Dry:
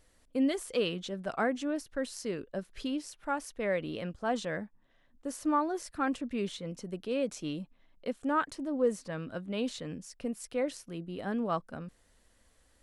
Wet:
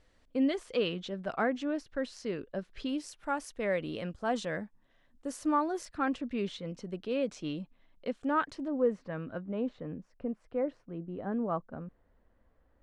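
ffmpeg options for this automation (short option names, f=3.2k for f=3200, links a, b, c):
-af "asetnsamples=n=441:p=0,asendcmd='2.89 lowpass f 10000;5.85 lowpass f 5000;8.68 lowpass f 2100;9.42 lowpass f 1200',lowpass=4.6k"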